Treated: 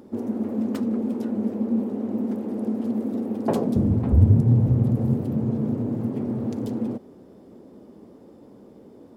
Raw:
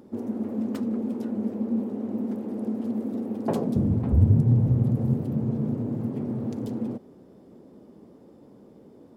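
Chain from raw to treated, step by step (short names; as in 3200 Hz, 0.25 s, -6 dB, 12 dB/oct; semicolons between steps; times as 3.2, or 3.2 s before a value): bell 150 Hz -4.5 dB 0.44 oct; gain +3.5 dB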